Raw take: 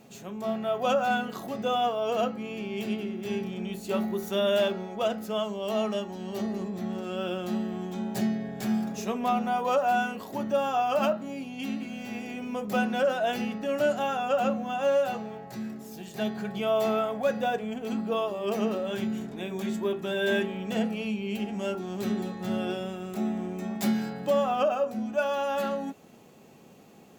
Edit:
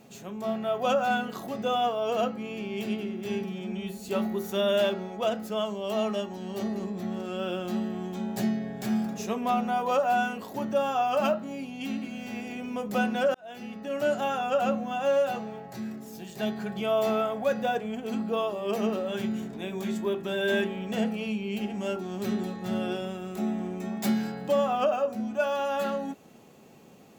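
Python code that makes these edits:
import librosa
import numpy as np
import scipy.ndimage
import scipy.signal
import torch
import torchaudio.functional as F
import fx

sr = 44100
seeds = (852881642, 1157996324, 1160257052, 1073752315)

y = fx.edit(x, sr, fx.stretch_span(start_s=3.44, length_s=0.43, factor=1.5),
    fx.fade_in_span(start_s=13.13, length_s=0.83), tone=tone)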